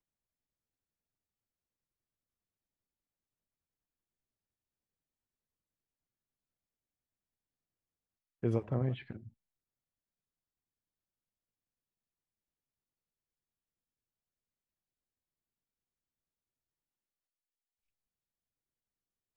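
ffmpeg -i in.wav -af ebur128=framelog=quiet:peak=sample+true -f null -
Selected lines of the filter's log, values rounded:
Integrated loudness:
  I:         -35.2 LUFS
  Threshold: -46.4 LUFS
Loudness range:
  LRA:         6.5 LU
  Threshold: -61.4 LUFS
  LRA low:   -46.9 LUFS
  LRA high:  -40.4 LUFS
Sample peak:
  Peak:      -17.8 dBFS
True peak:
  Peak:      -17.8 dBFS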